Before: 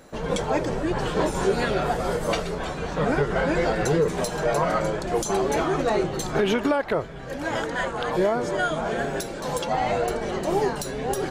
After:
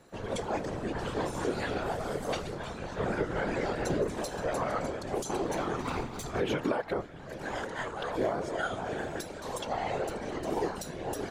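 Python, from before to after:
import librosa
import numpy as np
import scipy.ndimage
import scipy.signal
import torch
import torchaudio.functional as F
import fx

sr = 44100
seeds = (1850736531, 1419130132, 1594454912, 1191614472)

y = fx.lower_of_two(x, sr, delay_ms=0.84, at=(5.8, 6.24))
y = fx.dmg_crackle(y, sr, seeds[0], per_s=52.0, level_db=-53.0, at=(9.96, 10.92), fade=0.02)
y = fx.whisperise(y, sr, seeds[1])
y = F.gain(torch.from_numpy(y), -8.5).numpy()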